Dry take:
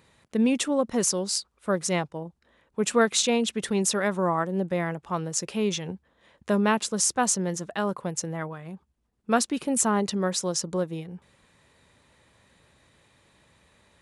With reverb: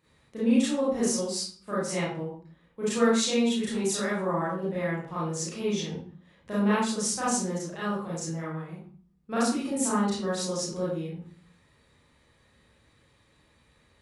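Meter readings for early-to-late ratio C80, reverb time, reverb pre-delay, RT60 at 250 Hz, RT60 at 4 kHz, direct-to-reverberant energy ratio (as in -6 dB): 5.0 dB, 0.45 s, 31 ms, 0.60 s, 0.35 s, -10.0 dB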